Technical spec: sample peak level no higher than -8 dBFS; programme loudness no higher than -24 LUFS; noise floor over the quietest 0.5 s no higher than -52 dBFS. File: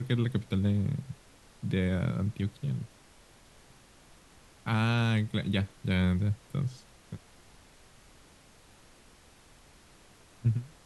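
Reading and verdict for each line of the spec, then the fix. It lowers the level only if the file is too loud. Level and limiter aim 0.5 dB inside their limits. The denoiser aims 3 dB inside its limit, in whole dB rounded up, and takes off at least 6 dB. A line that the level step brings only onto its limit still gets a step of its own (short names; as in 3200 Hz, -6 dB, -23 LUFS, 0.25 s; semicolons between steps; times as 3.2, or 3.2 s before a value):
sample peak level -15.0 dBFS: OK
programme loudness -31.0 LUFS: OK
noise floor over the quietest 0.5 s -57 dBFS: OK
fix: none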